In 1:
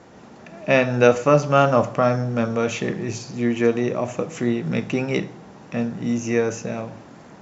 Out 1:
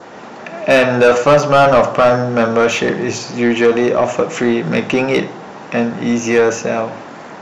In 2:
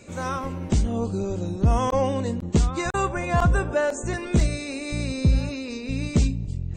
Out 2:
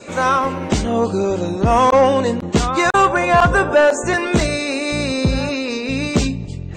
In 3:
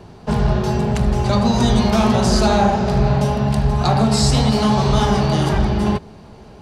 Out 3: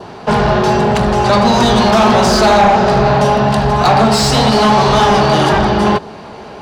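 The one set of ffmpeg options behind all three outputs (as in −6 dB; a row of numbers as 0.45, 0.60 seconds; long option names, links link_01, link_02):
-filter_complex "[0:a]adynamicequalizer=threshold=0.00501:dfrequency=2200:dqfactor=3.4:tfrequency=2200:tqfactor=3.4:attack=5:release=100:ratio=0.375:range=2.5:mode=cutabove:tftype=bell,asplit=2[link_01][link_02];[link_02]highpass=frequency=720:poles=1,volume=23dB,asoftclip=type=tanh:threshold=-0.5dB[link_03];[link_01][link_03]amix=inputs=2:normalize=0,lowpass=frequency=2600:poles=1,volume=-6dB"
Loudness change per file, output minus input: +7.5, +8.0, +6.0 LU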